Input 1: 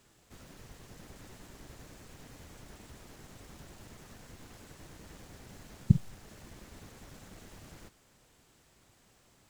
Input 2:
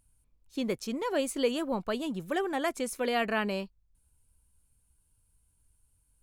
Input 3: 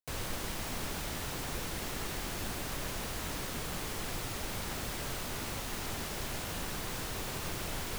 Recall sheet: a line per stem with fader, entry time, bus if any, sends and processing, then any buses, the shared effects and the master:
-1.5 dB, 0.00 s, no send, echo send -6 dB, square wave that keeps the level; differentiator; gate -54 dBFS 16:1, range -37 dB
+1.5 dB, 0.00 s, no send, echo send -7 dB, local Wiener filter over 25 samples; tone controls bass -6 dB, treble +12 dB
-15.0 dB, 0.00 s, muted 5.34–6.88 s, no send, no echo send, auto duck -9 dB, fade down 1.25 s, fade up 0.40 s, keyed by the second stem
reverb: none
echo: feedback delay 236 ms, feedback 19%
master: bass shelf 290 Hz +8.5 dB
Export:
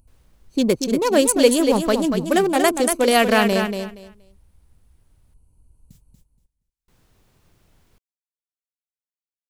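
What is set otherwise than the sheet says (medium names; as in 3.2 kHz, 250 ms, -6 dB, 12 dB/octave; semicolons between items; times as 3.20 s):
stem 1: missing square wave that keeps the level; stem 2 +1.5 dB -> +11.5 dB; stem 3 -15.0 dB -> -26.5 dB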